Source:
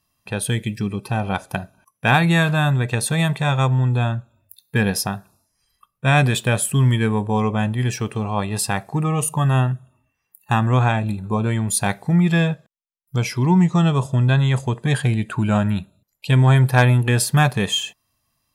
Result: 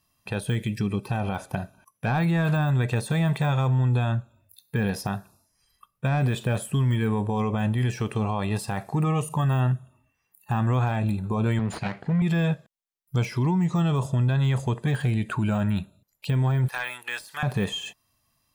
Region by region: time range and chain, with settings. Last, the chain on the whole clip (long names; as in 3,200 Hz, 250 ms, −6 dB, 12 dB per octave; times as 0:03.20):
0:11.59–0:12.22: lower of the sound and its delayed copy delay 0.42 ms + band-pass filter 110–3,700 Hz
0:16.68–0:17.43: high-pass filter 1,500 Hz + de-essing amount 45%
whole clip: de-essing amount 85%; brickwall limiter −17 dBFS